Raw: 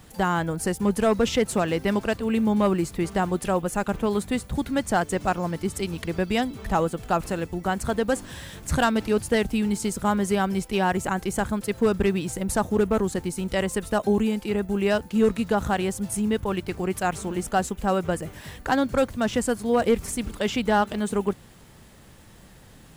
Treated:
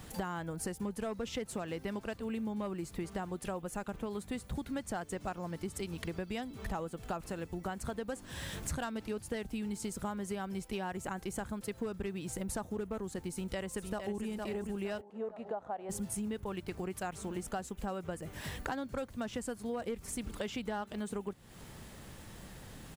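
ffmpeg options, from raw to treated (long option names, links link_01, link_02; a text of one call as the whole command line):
ffmpeg -i in.wav -filter_complex "[0:a]asplit=2[link_01][link_02];[link_02]afade=type=in:start_time=13.31:duration=0.01,afade=type=out:start_time=14.23:duration=0.01,aecho=0:1:460|920|1380|1840|2300|2760:0.473151|0.236576|0.118288|0.0591439|0.029572|0.014786[link_03];[link_01][link_03]amix=inputs=2:normalize=0,asplit=3[link_04][link_05][link_06];[link_04]afade=type=out:start_time=15:duration=0.02[link_07];[link_05]bandpass=frequency=680:width_type=q:width=2.8,afade=type=in:start_time=15:duration=0.02,afade=type=out:start_time=15.89:duration=0.02[link_08];[link_06]afade=type=in:start_time=15.89:duration=0.02[link_09];[link_07][link_08][link_09]amix=inputs=3:normalize=0,acompressor=threshold=-36dB:ratio=6" out.wav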